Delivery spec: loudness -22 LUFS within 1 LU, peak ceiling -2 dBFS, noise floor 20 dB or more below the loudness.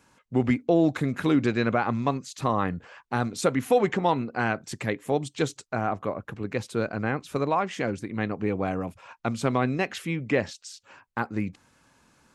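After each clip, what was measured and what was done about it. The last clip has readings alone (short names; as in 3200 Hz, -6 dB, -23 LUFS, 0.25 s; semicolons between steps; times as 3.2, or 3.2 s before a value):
loudness -27.5 LUFS; peak -11.0 dBFS; loudness target -22.0 LUFS
-> gain +5.5 dB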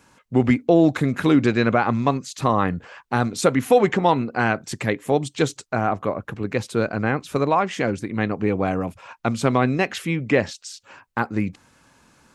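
loudness -22.0 LUFS; peak -5.5 dBFS; noise floor -62 dBFS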